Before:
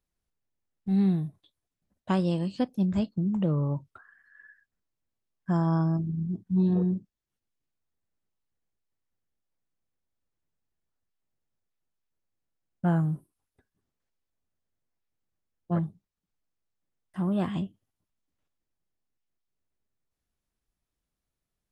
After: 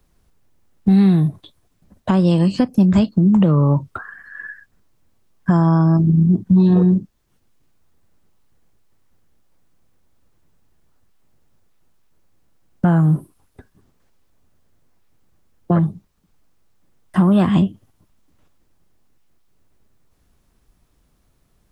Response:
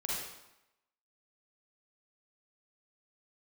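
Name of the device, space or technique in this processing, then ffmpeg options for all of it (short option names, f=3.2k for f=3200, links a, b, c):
mastering chain: -filter_complex "[0:a]asettb=1/sr,asplit=3[a][b][c];[a]atrim=end=2.424[d];[b]atrim=start=2.42:end=2.92,asetpts=PTS-STARTPTS,afade=t=in:d=0.004:c=qsin,afade=t=out:st=0.496:d=0.004:c=qsin,equalizer=f=3.6k:t=o:w=0.29:g=-10[e];[c]atrim=start=2.916[f];[d][e]acrossfade=d=0.004:c1=hsin:c2=qsin[g];[g][f]acrossfade=d=0.004:c1=qsin:c2=hsin,equalizer=f=1.1k:t=o:w=0.77:g=3,acrossover=split=220|1100[h][i][j];[h]acompressor=threshold=-39dB:ratio=4[k];[i]acompressor=threshold=-39dB:ratio=4[l];[j]acompressor=threshold=-45dB:ratio=4[m];[k][l][m]amix=inputs=3:normalize=0,acompressor=threshold=-41dB:ratio=1.5,tiltshelf=f=640:g=3.5,alimiter=level_in=26dB:limit=-1dB:release=50:level=0:latency=1,volume=-4dB"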